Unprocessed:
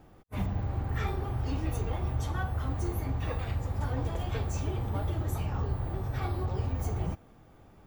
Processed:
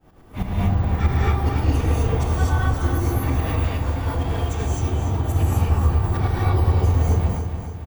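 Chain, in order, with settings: tremolo saw up 9.4 Hz, depth 95%; 3.54–5.19 negative-ratio compressor -38 dBFS, ratio -0.5; feedback echo 0.287 s, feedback 51%, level -8 dB; non-linear reverb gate 0.28 s rising, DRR -6 dB; gain +8 dB

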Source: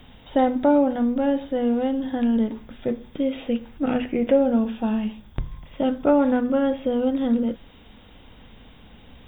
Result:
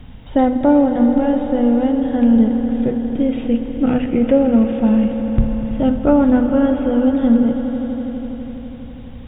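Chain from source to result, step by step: tone controls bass +10 dB, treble -10 dB; swelling echo 82 ms, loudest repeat 5, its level -14.5 dB; gain +2.5 dB

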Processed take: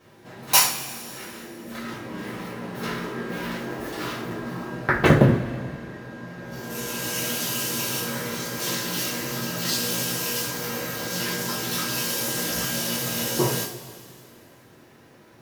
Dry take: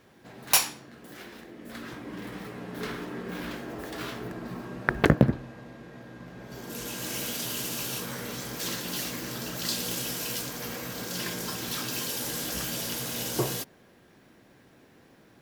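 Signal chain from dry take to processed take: two-slope reverb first 0.37 s, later 2.5 s, from -18 dB, DRR -9 dB; gain -3.5 dB

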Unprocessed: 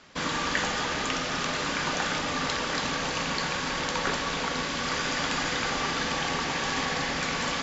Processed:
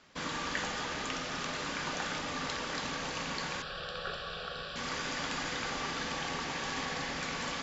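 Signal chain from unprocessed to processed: 3.62–4.76 fixed phaser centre 1400 Hz, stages 8; gain -7.5 dB

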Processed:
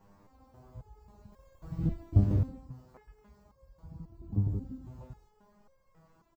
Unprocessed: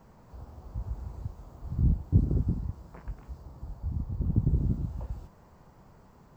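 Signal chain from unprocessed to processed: 1.32–2.46 sample leveller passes 2; speakerphone echo 0.17 s, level -10 dB; stepped resonator 3.7 Hz 100–540 Hz; gain +5 dB

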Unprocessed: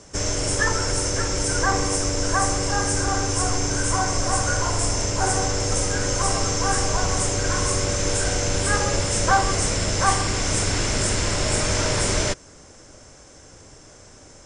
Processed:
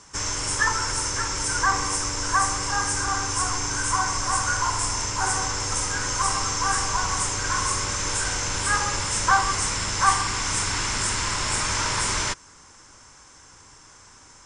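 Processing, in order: resonant low shelf 780 Hz -6.5 dB, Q 3; gain -1 dB

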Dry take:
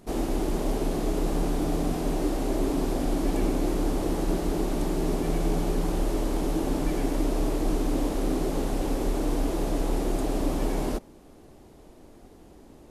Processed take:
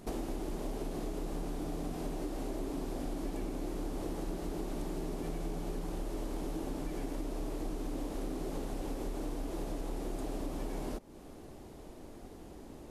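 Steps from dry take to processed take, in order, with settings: compressor, threshold -36 dBFS, peak gain reduction 15 dB; gain +1 dB

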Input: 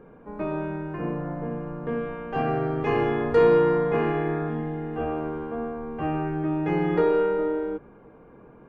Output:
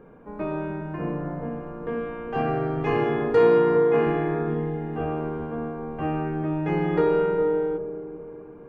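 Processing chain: 2.98–4.07 HPF 120 Hz; dark delay 0.405 s, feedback 44%, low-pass 560 Hz, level -7 dB

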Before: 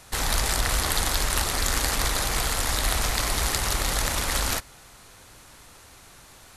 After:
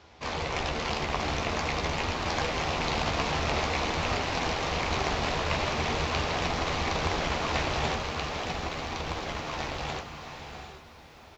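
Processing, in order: octaver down 1 oct, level +2 dB; HPF 92 Hz; bell 1400 Hz +3 dB 0.65 oct; flange 0.79 Hz, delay 6.9 ms, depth 1 ms, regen +27%; air absorption 59 m; echo 1.181 s -3.5 dB; non-linear reverb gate 0.48 s rising, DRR 8 dB; speed mistake 78 rpm record played at 45 rpm; lo-fi delay 0.636 s, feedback 35%, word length 9-bit, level -14 dB

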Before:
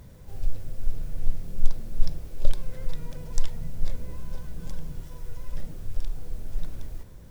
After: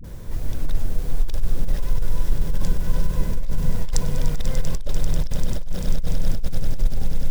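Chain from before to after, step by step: whole clip reversed; dispersion highs, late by 43 ms, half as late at 400 Hz; on a send: swelling echo 98 ms, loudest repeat 8, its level -12.5 dB; on the sum: negative-ratio compressor -21 dBFS, ratio -1; gain +7.5 dB

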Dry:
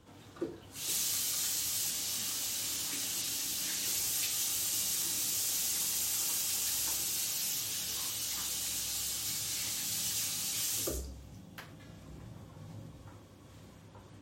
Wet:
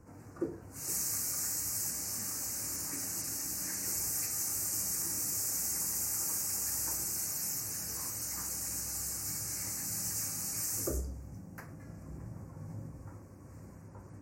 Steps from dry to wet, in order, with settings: Butterworth band-stop 3400 Hz, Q 0.97; low shelf 320 Hz +5 dB

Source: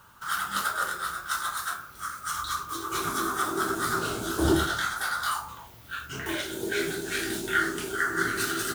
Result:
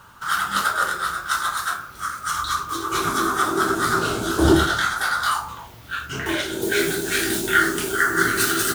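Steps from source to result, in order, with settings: high shelf 9700 Hz -7.5 dB, from 6.62 s +5.5 dB; gain +7.5 dB

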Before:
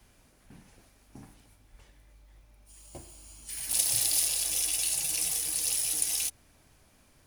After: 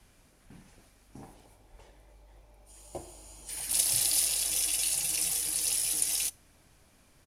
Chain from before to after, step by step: on a send at -22 dB: reverb, pre-delay 3 ms; on the sum: downsampling 32000 Hz; 1.19–3.64 band shelf 580 Hz +8.5 dB

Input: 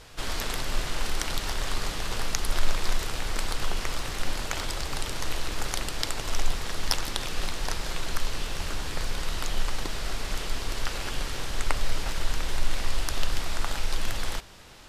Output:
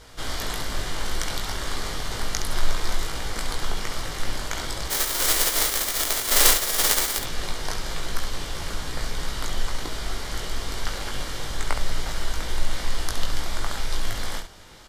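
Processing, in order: 4.89–7.17 spectral whitening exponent 0.1; notch 2600 Hz, Q 8.4; early reflections 19 ms -4 dB, 68 ms -7.5 dB

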